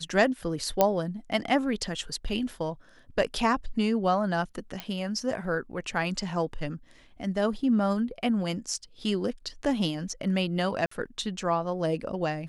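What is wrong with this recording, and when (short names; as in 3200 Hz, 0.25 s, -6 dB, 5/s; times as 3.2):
0.81 pop -7 dBFS
4.8 pop -17 dBFS
10.86–10.91 gap 54 ms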